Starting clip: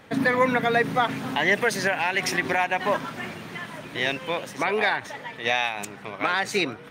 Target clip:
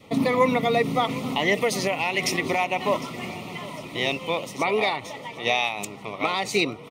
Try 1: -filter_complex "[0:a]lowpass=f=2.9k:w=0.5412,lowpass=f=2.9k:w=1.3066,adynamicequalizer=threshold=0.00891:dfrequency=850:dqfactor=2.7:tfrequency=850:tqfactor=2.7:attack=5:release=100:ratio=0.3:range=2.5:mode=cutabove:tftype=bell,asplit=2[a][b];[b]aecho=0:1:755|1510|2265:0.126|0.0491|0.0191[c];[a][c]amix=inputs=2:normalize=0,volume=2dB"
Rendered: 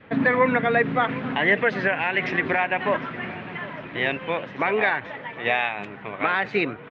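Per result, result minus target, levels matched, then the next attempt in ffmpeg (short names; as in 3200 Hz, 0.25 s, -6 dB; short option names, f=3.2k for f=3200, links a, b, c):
4000 Hz band -7.5 dB; 2000 Hz band +4.0 dB
-filter_complex "[0:a]adynamicequalizer=threshold=0.00891:dfrequency=850:dqfactor=2.7:tfrequency=850:tqfactor=2.7:attack=5:release=100:ratio=0.3:range=2.5:mode=cutabove:tftype=bell,asplit=2[a][b];[b]aecho=0:1:755|1510|2265:0.126|0.0491|0.0191[c];[a][c]amix=inputs=2:normalize=0,volume=2dB"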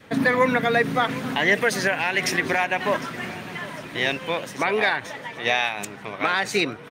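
2000 Hz band +3.5 dB
-filter_complex "[0:a]adynamicequalizer=threshold=0.00891:dfrequency=850:dqfactor=2.7:tfrequency=850:tqfactor=2.7:attack=5:release=100:ratio=0.3:range=2.5:mode=cutabove:tftype=bell,asuperstop=centerf=1600:order=4:qfactor=2.1,asplit=2[a][b];[b]aecho=0:1:755|1510|2265:0.126|0.0491|0.0191[c];[a][c]amix=inputs=2:normalize=0,volume=2dB"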